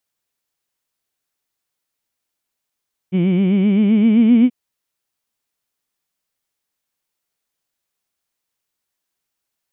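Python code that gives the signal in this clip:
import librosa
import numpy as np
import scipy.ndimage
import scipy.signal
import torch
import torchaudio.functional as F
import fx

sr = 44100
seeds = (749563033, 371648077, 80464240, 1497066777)

y = fx.vowel(sr, seeds[0], length_s=1.38, word='heed', hz=176.0, glide_st=5.5, vibrato_hz=7.7, vibrato_st=1.05)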